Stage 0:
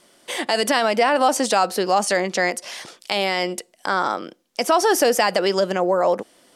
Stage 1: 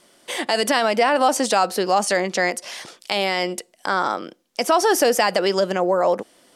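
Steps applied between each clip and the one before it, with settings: nothing audible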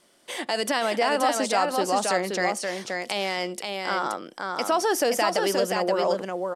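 echo 0.526 s -4 dB; gain -6 dB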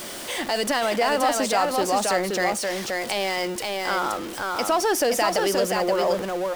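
zero-crossing step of -29.5 dBFS

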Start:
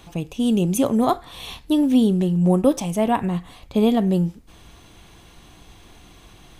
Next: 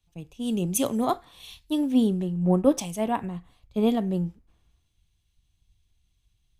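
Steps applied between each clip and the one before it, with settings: three-band expander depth 100%; gain -7 dB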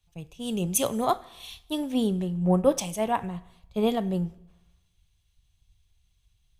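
bell 270 Hz -8.5 dB 0.81 oct; on a send at -19.5 dB: reverb RT60 0.95 s, pre-delay 7 ms; on the sum: gain +2 dB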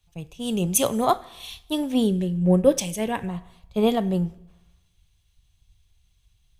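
spectral gain 2.06–3.27, 620–1500 Hz -8 dB; gain +4 dB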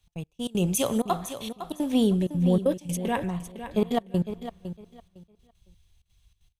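limiter -14 dBFS, peak gain reduction 9 dB; step gate "x.x..x.xxxxxx.xx" 192 bpm -24 dB; on a send: feedback echo 0.507 s, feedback 21%, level -11 dB

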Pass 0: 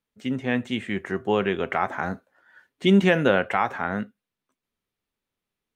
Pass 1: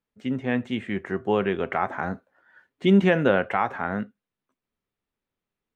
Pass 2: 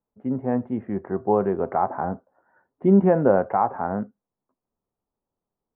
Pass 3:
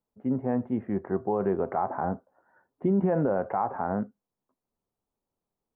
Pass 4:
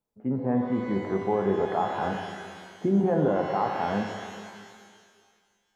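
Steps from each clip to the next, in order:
high shelf 3700 Hz -11 dB
ladder low-pass 1100 Hz, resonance 35%; gain +8.5 dB
limiter -15 dBFS, peak gain reduction 10 dB; gain -1.5 dB
shimmer reverb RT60 1.9 s, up +12 st, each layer -8 dB, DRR 4 dB

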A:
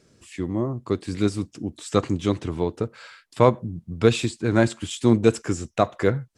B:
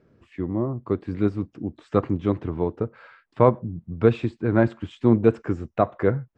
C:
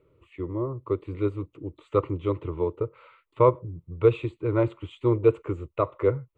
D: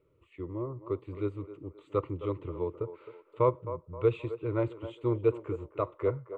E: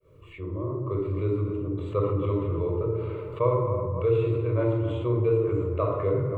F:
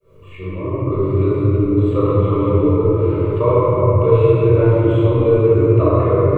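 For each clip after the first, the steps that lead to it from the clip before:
LPF 1600 Hz 12 dB/oct
fixed phaser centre 1100 Hz, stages 8
narrowing echo 0.263 s, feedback 48%, band-pass 730 Hz, level -11 dB; gain -6.5 dB
opening faded in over 1.27 s; shoebox room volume 2800 m³, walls furnished, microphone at 5.6 m; fast leveller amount 50%; gain -6 dB
shoebox room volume 190 m³, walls hard, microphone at 1.2 m; gain +2.5 dB

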